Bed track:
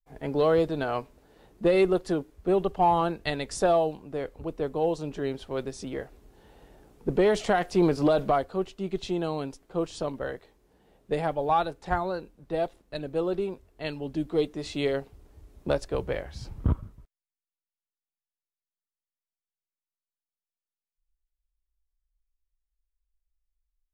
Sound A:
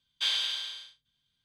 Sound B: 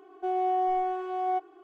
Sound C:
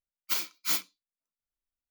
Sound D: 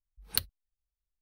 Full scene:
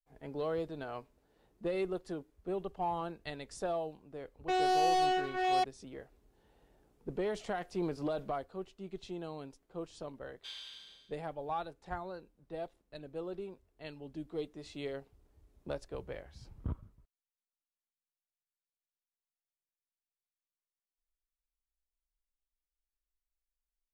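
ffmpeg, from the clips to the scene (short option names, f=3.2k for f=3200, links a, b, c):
-filter_complex "[0:a]volume=-13dB[a];[2:a]acrusher=bits=4:mix=0:aa=0.5,atrim=end=1.63,asetpts=PTS-STARTPTS,volume=-2dB,afade=t=in:d=0.004:c=hsin,afade=t=out:st=1.626:d=0.004:c=hsin,adelay=187425S[b];[1:a]atrim=end=1.44,asetpts=PTS-STARTPTS,volume=-18dB,afade=t=in:d=0.004:c=hsin,afade=t=out:st=1.436:d=0.004:c=hsin,adelay=10230[c];[a][b][c]amix=inputs=3:normalize=0"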